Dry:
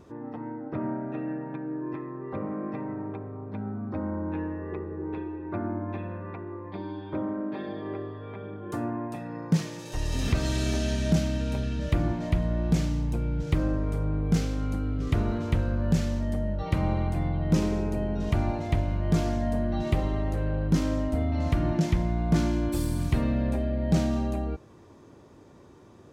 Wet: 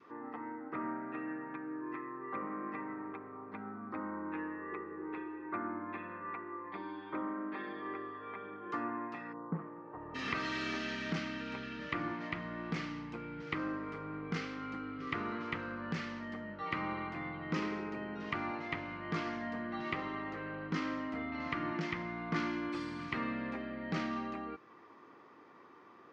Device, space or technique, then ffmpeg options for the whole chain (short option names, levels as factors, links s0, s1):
phone earpiece: -filter_complex "[0:a]adynamicequalizer=threshold=0.00501:dfrequency=710:dqfactor=1.2:tfrequency=710:tqfactor=1.2:attack=5:release=100:ratio=0.375:range=3:mode=cutabove:tftype=bell,asplit=3[s0][s1][s2];[s0]afade=t=out:st=9.32:d=0.02[s3];[s1]lowpass=f=1100:w=0.5412,lowpass=f=1100:w=1.3066,afade=t=in:st=9.32:d=0.02,afade=t=out:st=10.14:d=0.02[s4];[s2]afade=t=in:st=10.14:d=0.02[s5];[s3][s4][s5]amix=inputs=3:normalize=0,highpass=370,equalizer=f=390:t=q:w=4:g=-3,equalizer=f=590:t=q:w=4:g=-8,equalizer=f=1200:t=q:w=4:g=9,equalizer=f=2000:t=q:w=4:g=7,equalizer=f=3700:t=q:w=4:g=-6,lowpass=f=4300:w=0.5412,lowpass=f=4300:w=1.3066,volume=0.841"